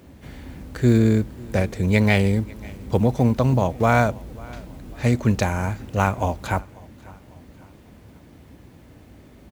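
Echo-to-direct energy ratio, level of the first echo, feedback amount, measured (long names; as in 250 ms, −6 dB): −22.0 dB, −23.0 dB, 45%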